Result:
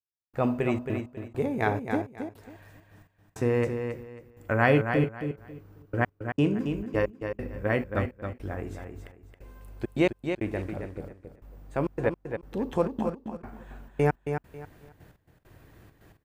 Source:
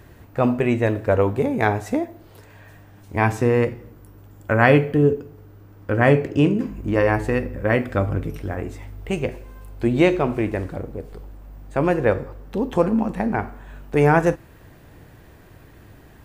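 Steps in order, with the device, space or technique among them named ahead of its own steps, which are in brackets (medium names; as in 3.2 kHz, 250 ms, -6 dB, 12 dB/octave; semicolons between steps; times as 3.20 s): trance gate with a delay (trance gate "...xxxx.x" 134 bpm -60 dB; feedback delay 272 ms, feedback 24%, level -7 dB); trim -7 dB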